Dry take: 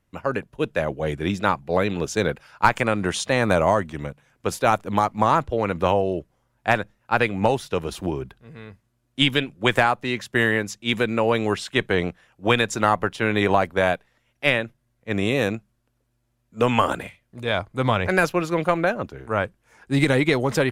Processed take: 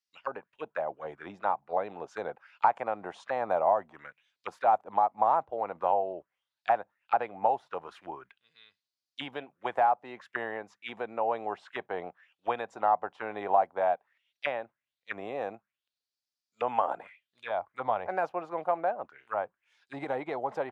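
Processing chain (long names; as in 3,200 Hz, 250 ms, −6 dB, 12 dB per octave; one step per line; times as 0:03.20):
envelope filter 770–4,900 Hz, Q 4.1, down, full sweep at −20.5 dBFS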